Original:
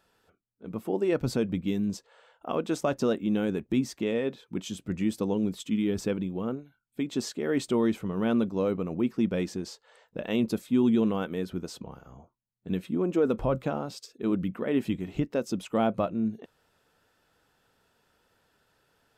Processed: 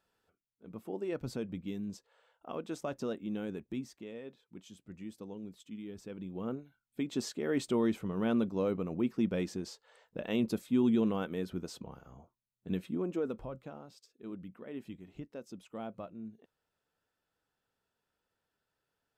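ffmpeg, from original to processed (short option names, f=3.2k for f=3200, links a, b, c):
-af "volume=2dB,afade=t=out:st=3.59:d=0.46:silence=0.473151,afade=t=in:st=6.09:d=0.47:silence=0.237137,afade=t=out:st=12.75:d=0.76:silence=0.251189"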